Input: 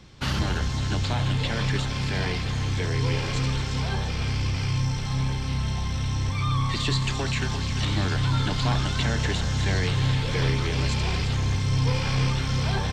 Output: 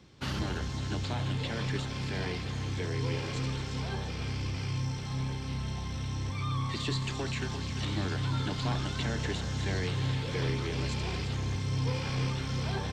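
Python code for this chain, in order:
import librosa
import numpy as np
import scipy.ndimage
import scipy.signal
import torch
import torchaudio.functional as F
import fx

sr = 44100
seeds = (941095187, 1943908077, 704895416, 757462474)

y = scipy.signal.sosfilt(scipy.signal.butter(2, 55.0, 'highpass', fs=sr, output='sos'), x)
y = fx.peak_eq(y, sr, hz=340.0, db=4.5, octaves=1.3)
y = y * librosa.db_to_amplitude(-8.0)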